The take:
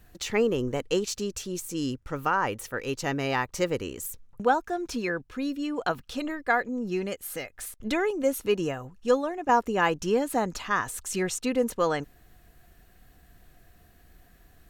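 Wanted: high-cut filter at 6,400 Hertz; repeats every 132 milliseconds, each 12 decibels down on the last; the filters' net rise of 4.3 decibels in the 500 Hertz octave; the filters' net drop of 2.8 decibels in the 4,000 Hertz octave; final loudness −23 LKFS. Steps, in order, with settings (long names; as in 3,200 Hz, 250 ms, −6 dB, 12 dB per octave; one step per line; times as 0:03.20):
low-pass filter 6,400 Hz
parametric band 500 Hz +5 dB
parametric band 4,000 Hz −3.5 dB
repeating echo 132 ms, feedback 25%, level −12 dB
level +2.5 dB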